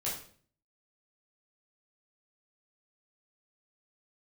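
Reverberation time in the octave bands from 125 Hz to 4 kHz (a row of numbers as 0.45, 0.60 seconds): 0.70, 0.65, 0.55, 0.45, 0.45, 0.45 seconds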